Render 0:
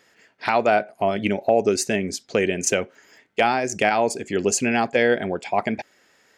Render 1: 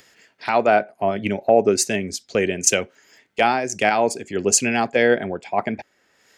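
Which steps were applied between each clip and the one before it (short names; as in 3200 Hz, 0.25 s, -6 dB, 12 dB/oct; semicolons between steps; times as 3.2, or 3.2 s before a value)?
upward compressor, threshold -26 dBFS; three-band expander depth 70%; gain +1 dB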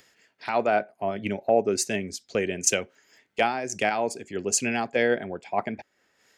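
noise-modulated level, depth 50%; gain -3.5 dB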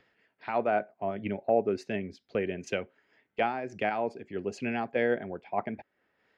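air absorption 360 m; gain -3 dB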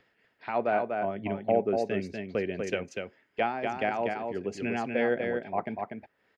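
echo 0.243 s -4.5 dB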